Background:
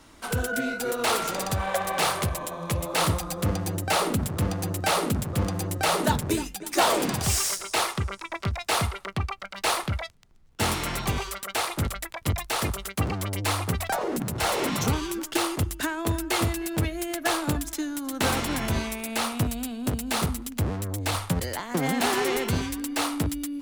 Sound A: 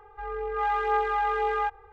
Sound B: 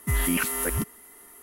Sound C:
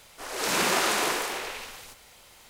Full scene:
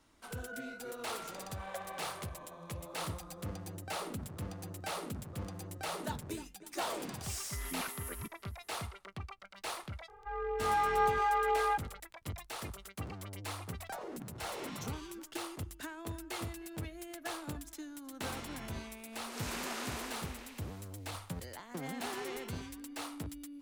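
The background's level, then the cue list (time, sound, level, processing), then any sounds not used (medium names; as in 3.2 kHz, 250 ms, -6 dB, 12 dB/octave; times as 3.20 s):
background -15.5 dB
7.44 s: add B -16.5 dB
10.08 s: add A -4 dB
18.94 s: add C -16 dB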